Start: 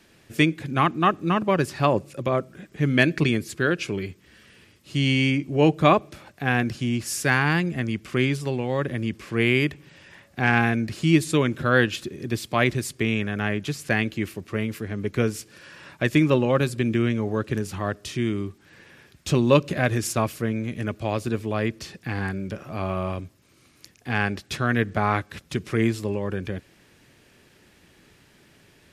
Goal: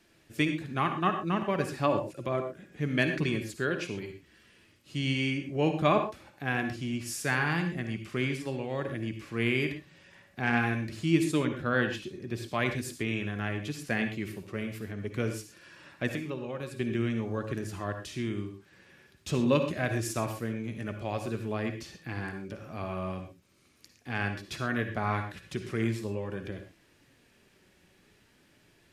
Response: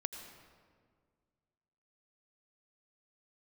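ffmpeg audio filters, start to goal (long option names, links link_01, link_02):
-filter_complex "[0:a]asettb=1/sr,asplit=3[link_01][link_02][link_03];[link_01]atrim=end=11.424[link_04];[link_02]atrim=start=11.42:end=12.46,asetpts=PTS-STARTPTS,afade=type=in:duration=0.004:curve=qsin,afade=type=out:start_time=1.036:duration=0.004:curve=qsin,highshelf=frequency=4900:gain=-7[link_05];[link_03]atrim=start=12.456[link_06];[link_04][link_05]acrossfade=duration=0.004:curve1=hsin:curve2=qsin[link_07];[link_07][link_06]acrossfade=duration=0.004:curve1=qsin:curve2=hsin,asettb=1/sr,asplit=3[link_08][link_09][link_10];[link_08]atrim=end=16.154[link_11];[link_09]atrim=start=16.15:end=16.8,asetpts=PTS-STARTPTS,afade=type=in:duration=0.004:curve=qsin,afade=type=out:start_time=0.646:duration=0.004:curve=qsin,acompressor=threshold=-25dB:ratio=6[link_12];[link_10]atrim=start=16.796[link_13];[link_11][link_12]acrossfade=duration=0.004:curve1=hsin:curve2=qsin[link_14];[link_14][link_13]acrossfade=duration=0.004:curve1=qsin:curve2=hsin,flanger=delay=2.9:depth=2.5:regen=76:speed=0.45:shape=sinusoidal[link_15];[1:a]atrim=start_sample=2205,afade=type=out:start_time=0.27:duration=0.01,atrim=end_sample=12348,asetrate=70560,aresample=44100[link_16];[link_15][link_16]afir=irnorm=-1:irlink=0,volume=2dB"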